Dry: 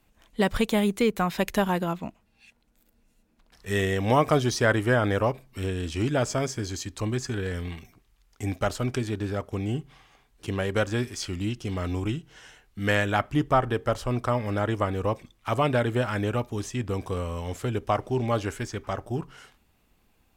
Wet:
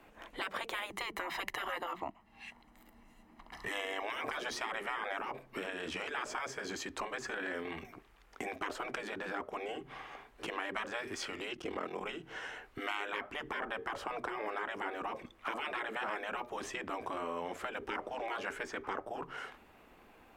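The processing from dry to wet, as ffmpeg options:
-filter_complex "[0:a]asettb=1/sr,asplit=3[s0][s1][s2];[s0]atrim=end=0.904[s3];[s1]atrim=start=0.9:end=4.03,asetpts=PTS-STARTPTS,afade=t=in:d=0.004:c=qsin,afade=t=out:st=3.126:d=0.004:c=qsin,aecho=1:1:1:0.65,atrim=end_sample=138033[s4];[s2]atrim=start=4.026[s5];[s3][s4]acrossfade=d=0.004:c1=hsin:c2=qsin[s6];[s6][s5]acrossfade=d=0.004:c1=qsin:c2=hsin,asplit=3[s7][s8][s9];[s7]afade=t=out:st=11.54:d=0.02[s10];[s8]aeval=exprs='val(0)*sin(2*PI*20*n/s)':c=same,afade=t=in:st=11.54:d=0.02,afade=t=out:st=12.01:d=0.02[s11];[s9]afade=t=in:st=12.01:d=0.02[s12];[s10][s11][s12]amix=inputs=3:normalize=0,afftfilt=real='re*lt(hypot(re,im),0.112)':imag='im*lt(hypot(re,im),0.112)':win_size=1024:overlap=0.75,acrossover=split=270 2500:gain=0.178 1 0.178[s13][s14][s15];[s13][s14][s15]amix=inputs=3:normalize=0,acompressor=threshold=0.002:ratio=2.5,volume=4.22"

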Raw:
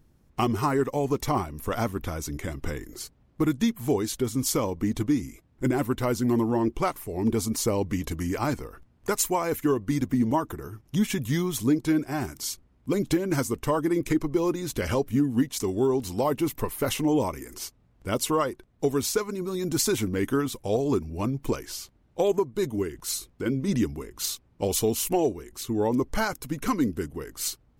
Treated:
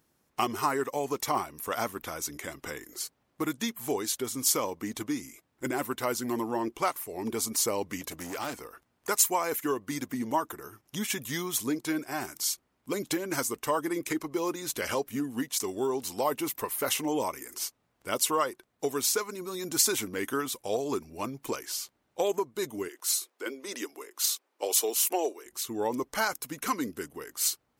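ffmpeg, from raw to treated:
-filter_complex "[0:a]asettb=1/sr,asplit=3[s0][s1][s2];[s0]atrim=end=8.014[s3];[s1]atrim=start=8.01:end=8.61,asetpts=PTS-STARTPTS,afade=t=in:d=0.004:c=qsin,afade=t=out:st=0.596:d=0.004:c=qsin,asoftclip=type=hard:threshold=0.0422[s4];[s2]atrim=start=8.606[s5];[s3][s4]acrossfade=d=0.004:c1=hsin:c2=qsin[s6];[s6][s5]acrossfade=d=0.004:c1=qsin:c2=hsin,asettb=1/sr,asplit=3[s7][s8][s9];[s7]atrim=end=22.884[s10];[s8]atrim=start=22.88:end=25.46,asetpts=PTS-STARTPTS,afade=t=in:d=0.004:c=qsin,afade=t=out:st=2.576:d=0.004:c=qsin,highpass=f=330:w=0.5412,highpass=f=330:w=1.3066[s11];[s9]atrim=start=25.456[s12];[s10][s11]acrossfade=d=0.004:c1=hsin:c2=qsin[s13];[s13][s12]acrossfade=d=0.004:c1=qsin:c2=hsin,highpass=f=1200:p=1,equalizer=f=3000:w=0.48:g=-3.5,volume=1.68"

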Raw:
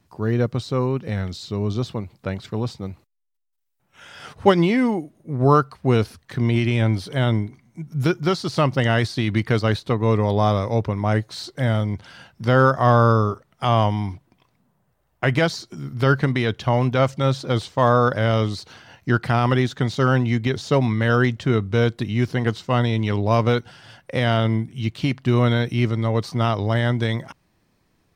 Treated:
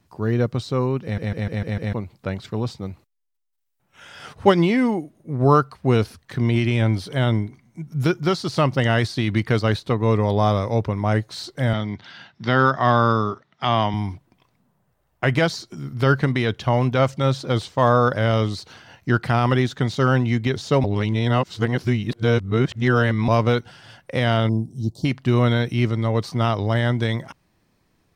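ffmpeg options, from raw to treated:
-filter_complex "[0:a]asettb=1/sr,asplit=3[s0][s1][s2];[s0]atrim=end=11.734[s3];[s1]atrim=start=11.73:end=13.94,asetpts=PTS-STARTPTS,afade=t=in:d=0.004:c=qsin,afade=t=out:st=2.206:d=0.004:c=qsin,highpass=140,equalizer=f=510:t=q:w=4:g=-7,equalizer=f=1900:t=q:w=4:g=5,equalizer=f=3700:t=q:w=4:g=7,lowpass=f=5800:w=0.5412,lowpass=f=5800:w=1.3066[s4];[s2]atrim=start=13.936[s5];[s3][s4]acrossfade=d=0.004:c1=hsin:c2=qsin[s6];[s6][s5]acrossfade=d=0.004:c1=qsin:c2=hsin,asettb=1/sr,asplit=3[s7][s8][s9];[s7]atrim=end=24.494[s10];[s8]atrim=start=24.49:end=25.05,asetpts=PTS-STARTPTS,afade=t=in:d=0.004:c=qsin,afade=t=out:st=0.556:d=0.004:c=qsin,asuperstop=centerf=2000:order=8:qfactor=0.54[s11];[s9]atrim=start=25.046[s12];[s10][s11]acrossfade=d=0.004:c1=hsin:c2=qsin[s13];[s13][s12]acrossfade=d=0.004:c1=qsin:c2=hsin,asplit=9[s14][s15][s16][s17][s18][s19][s20][s21][s22];[s14]atrim=end=1.182[s23];[s15]atrim=start=1.028:end=1.182[s24];[s16]atrim=start=1.028:end=1.182[s25];[s17]atrim=start=1.028:end=1.182[s26];[s18]atrim=start=1.028:end=1.182[s27];[s19]atrim=start=1.028:end=1.182[s28];[s20]atrim=start=1.928:end=20.842[s29];[s21]atrim=start=20.838:end=23.282,asetpts=PTS-STARTPTS,areverse[s30];[s22]atrim=start=23.278[s31];[s23][s24]acrossfade=d=0.004:c1=hsin:c2=hsin[s32];[s32][s25]acrossfade=d=0.004:c1=hsin:c2=hsin[s33];[s33][s26]acrossfade=d=0.004:c1=hsin:c2=hsin[s34];[s34][s27]acrossfade=d=0.004:c1=hsin:c2=hsin[s35];[s35][s28]acrossfade=d=0.004:c1=hsin:c2=hsin[s36];[s36][s29]acrossfade=d=0.004:c1=hsin:c2=hsin[s37];[s37][s30]acrossfade=d=0.004:c1=hsin:c2=hsin[s38];[s38][s31]acrossfade=d=0.004:c1=hsin:c2=hsin"

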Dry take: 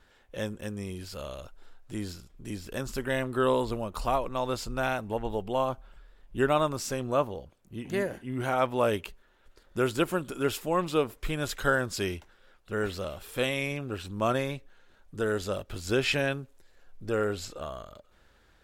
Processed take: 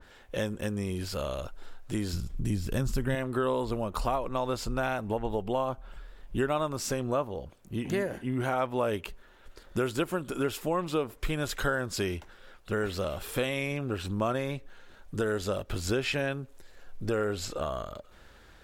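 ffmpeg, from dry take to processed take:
-filter_complex "[0:a]asettb=1/sr,asplit=3[s0][s1][s2];[s0]atrim=end=2.134[s3];[s1]atrim=start=2.13:end=3.15,asetpts=PTS-STARTPTS,afade=t=in:d=0.004:c=qsin,afade=t=out:st=1.016:d=0.004:c=qsin,bass=f=250:g=12,treble=f=4000:g=3[s4];[s2]atrim=start=3.146[s5];[s3][s4]acrossfade=d=0.004:c1=hsin:c2=qsin[s6];[s6][s5]acrossfade=d=0.004:c1=qsin:c2=hsin,acompressor=threshold=0.0158:ratio=3,adynamicequalizer=threshold=0.002:dfrequency=2100:dqfactor=0.7:tfrequency=2100:tqfactor=0.7:attack=5:release=100:ratio=0.375:range=1.5:mode=cutabove:tftype=highshelf,volume=2.37"

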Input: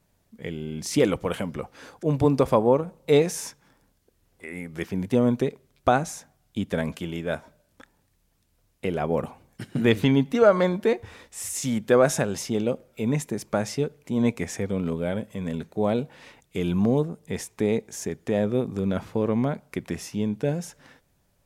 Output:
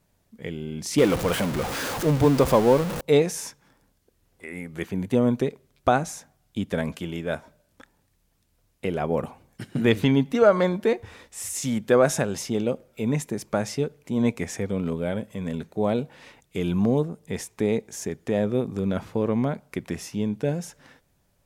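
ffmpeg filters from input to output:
-filter_complex "[0:a]asettb=1/sr,asplit=3[s0][s1][s2];[s0]atrim=end=0.984[s3];[s1]atrim=start=0.98:end=3.01,asetpts=PTS-STARTPTS,afade=t=in:d=0.004:c=qsin,afade=t=out:st=2.026:d=0.004:c=qsin,aeval=exprs='val(0)+0.5*0.0596*sgn(val(0))':c=same[s4];[s2]atrim=start=3.006[s5];[s3][s4]acrossfade=d=0.004:c1=hsin:c2=qsin[s6];[s6][s5]acrossfade=d=0.004:c1=qsin:c2=hsin,asettb=1/sr,asplit=3[s7][s8][s9];[s7]atrim=end=4.744[s10];[s8]atrim=start=4.74:end=5.35,asetpts=PTS-STARTPTS,afade=t=in:d=0.004:c=qsin,afade=t=out:st=0.606:d=0.004:c=qsin,bandreject=f=5300:w=6.1[s11];[s9]atrim=start=5.346[s12];[s10][s11]acrossfade=d=0.004:c1=hsin:c2=qsin[s13];[s13][s12]acrossfade=d=0.004:c1=qsin:c2=hsin"

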